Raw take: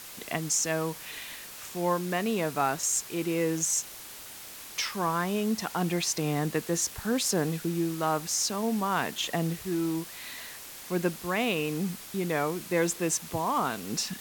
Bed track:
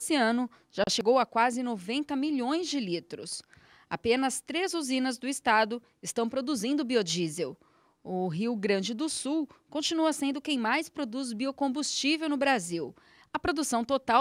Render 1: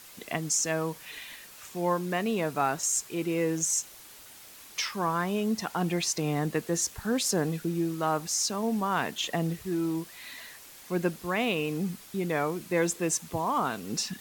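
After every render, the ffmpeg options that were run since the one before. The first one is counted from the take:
-af "afftdn=nr=6:nf=-44"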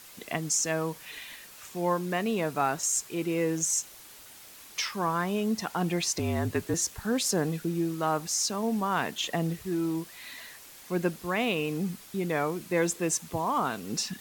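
-filter_complex "[0:a]asettb=1/sr,asplit=3[s0][s1][s2];[s0]atrim=end=6.194[s3];[s1]atrim=start=6.19:end=6.74,asetpts=PTS-STARTPTS,afade=t=in:d=0.004:c=qsin,afade=t=out:st=0.546:d=0.004:c=qsin,afreqshift=-51[s4];[s2]atrim=start=6.736[s5];[s3][s4]acrossfade=d=0.004:c1=hsin:c2=qsin[s6];[s6][s5]acrossfade=d=0.004:c1=qsin:c2=hsin"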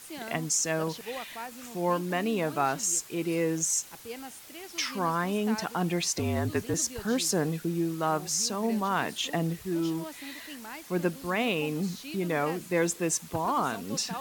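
-filter_complex "[1:a]volume=0.178[s0];[0:a][s0]amix=inputs=2:normalize=0"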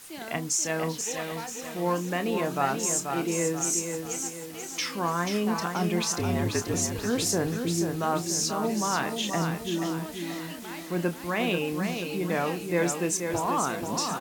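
-filter_complex "[0:a]asplit=2[s0][s1];[s1]adelay=29,volume=0.299[s2];[s0][s2]amix=inputs=2:normalize=0,asplit=2[s3][s4];[s4]aecho=0:1:484|968|1452|1936|2420:0.501|0.221|0.097|0.0427|0.0188[s5];[s3][s5]amix=inputs=2:normalize=0"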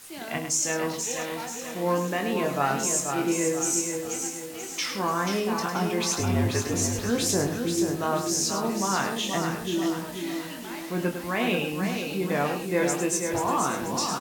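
-filter_complex "[0:a]asplit=2[s0][s1];[s1]adelay=21,volume=0.501[s2];[s0][s2]amix=inputs=2:normalize=0,aecho=1:1:103:0.398"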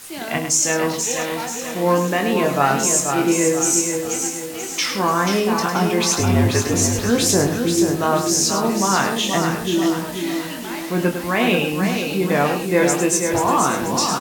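-af "volume=2.51"

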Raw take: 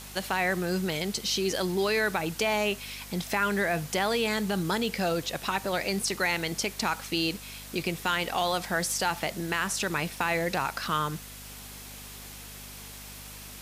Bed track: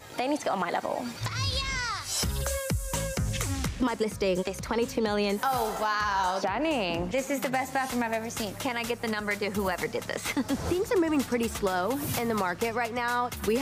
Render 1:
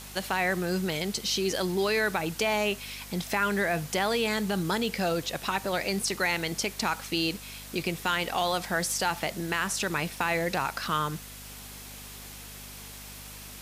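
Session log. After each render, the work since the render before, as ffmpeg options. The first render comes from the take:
-af anull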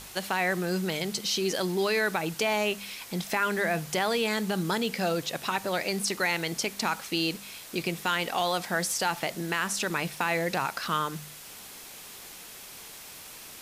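-af "bandreject=f=50:t=h:w=4,bandreject=f=100:t=h:w=4,bandreject=f=150:t=h:w=4,bandreject=f=200:t=h:w=4,bandreject=f=250:t=h:w=4"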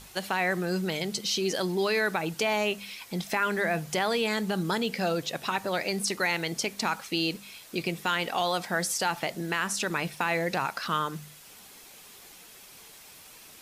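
-af "afftdn=nr=6:nf=-45"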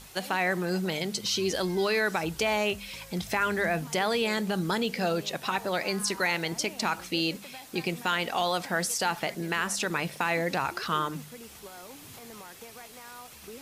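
-filter_complex "[1:a]volume=0.112[s0];[0:a][s0]amix=inputs=2:normalize=0"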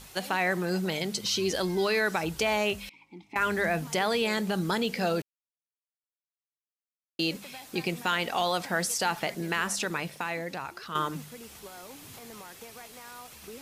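-filter_complex "[0:a]asettb=1/sr,asplit=3[s0][s1][s2];[s0]atrim=end=2.894[s3];[s1]atrim=start=2.89:end=3.36,asetpts=PTS-STARTPTS,afade=t=in:d=0.004:c=qsin,afade=t=out:st=0.466:d=0.004:c=qsin,asplit=3[s4][s5][s6];[s4]bandpass=f=300:t=q:w=8,volume=1[s7];[s5]bandpass=f=870:t=q:w=8,volume=0.501[s8];[s6]bandpass=f=2240:t=q:w=8,volume=0.355[s9];[s7][s8][s9]amix=inputs=3:normalize=0[s10];[s2]atrim=start=3.356[s11];[s3][s10]acrossfade=d=0.004:c1=hsin:c2=qsin[s12];[s12][s11]acrossfade=d=0.004:c1=qsin:c2=hsin,asplit=4[s13][s14][s15][s16];[s13]atrim=end=5.22,asetpts=PTS-STARTPTS,afade=t=out:st=5.216:d=0.004:c=hsin[s17];[s14]atrim=start=5.22:end=7.19,asetpts=PTS-STARTPTS,volume=0[s18];[s15]atrim=start=7.19:end=10.95,asetpts=PTS-STARTPTS,afade=t=in:d=0.004:c=hsin,afade=t=out:st=2.52:d=1.24:c=qua:silence=0.354813[s19];[s16]atrim=start=10.95,asetpts=PTS-STARTPTS,afade=t=in:d=0.004:c=hsin:silence=0.354813[s20];[s17][s18][s19][s20]concat=n=4:v=0:a=1"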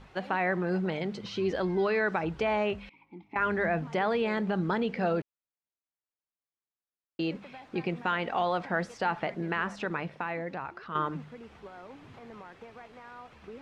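-af "lowpass=1900"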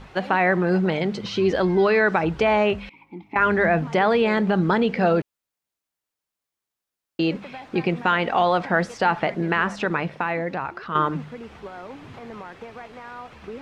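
-af "volume=2.82"

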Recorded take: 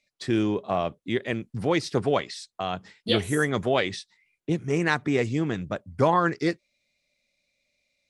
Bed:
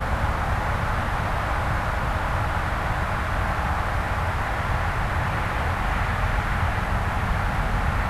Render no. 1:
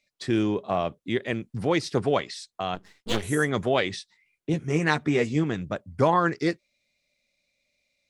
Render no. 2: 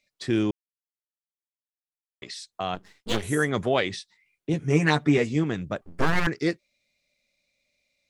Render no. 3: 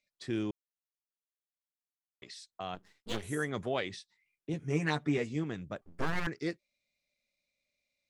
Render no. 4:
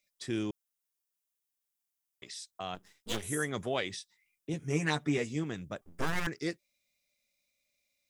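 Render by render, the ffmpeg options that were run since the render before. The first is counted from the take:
-filter_complex "[0:a]asplit=3[s0][s1][s2];[s0]afade=t=out:st=2.74:d=0.02[s3];[s1]aeval=exprs='max(val(0),0)':c=same,afade=t=in:st=2.74:d=0.02,afade=t=out:st=3.22:d=0.02[s4];[s2]afade=t=in:st=3.22:d=0.02[s5];[s3][s4][s5]amix=inputs=3:normalize=0,asettb=1/sr,asplit=3[s6][s7][s8];[s6]atrim=end=4.524[s9];[s7]atrim=start=4.52:end=5.44,asetpts=PTS-STARTPTS,afade=t=in:d=0.004:c=qsin,afade=t=out:st=0.916:d=0.004:c=qsin,asplit=2[s10][s11];[s11]adelay=13,volume=0.501[s12];[s10][s12]amix=inputs=2:normalize=0,atrim=end_sample=40572[s13];[s8]atrim=start=5.436[s14];[s9][s13]acrossfade=d=0.004:c1=hsin:c2=qsin[s15];[s15][s14]acrossfade=d=0.004:c1=qsin:c2=hsin"
-filter_complex "[0:a]asettb=1/sr,asplit=3[s0][s1][s2];[s0]atrim=end=4.614[s3];[s1]atrim=start=4.61:end=5.18,asetpts=PTS-STARTPTS,afade=t=in:d=0.004:c=qsin,afade=t=out:st=0.566:d=0.004:c=qsin,aecho=1:1:6.9:0.71,atrim=end_sample=25137[s4];[s2]atrim=start=5.176[s5];[s3][s4]acrossfade=d=0.004:c1=hsin:c2=qsin[s6];[s6][s5]acrossfade=d=0.004:c1=qsin:c2=hsin,asettb=1/sr,asplit=3[s7][s8][s9];[s7]atrim=end=5.814[s10];[s8]atrim=start=5.81:end=6.27,asetpts=PTS-STARTPTS,afade=t=in:d=0.004:c=qsin,afade=t=out:st=0.456:d=0.004:c=qsin,aeval=exprs='abs(val(0))':c=same[s11];[s9]atrim=start=6.266[s12];[s10][s11]acrossfade=d=0.004:c1=hsin:c2=qsin[s13];[s13][s12]acrossfade=d=0.004:c1=qsin:c2=hsin,asplit=3[s14][s15][s16];[s14]atrim=end=0.51,asetpts=PTS-STARTPTS,afade=t=out:st=0.506:d=0.004:c=hsin[s17];[s15]atrim=start=0.51:end=2.22,asetpts=PTS-STARTPTS,volume=0[s18];[s16]atrim=start=2.22,asetpts=PTS-STARTPTS,afade=t=in:d=0.004:c=hsin[s19];[s17][s18][s19]concat=n=3:v=0:a=1"
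-af "volume=0.316"
-af "highshelf=f=5200:g=12,bandreject=f=4300:w=13"

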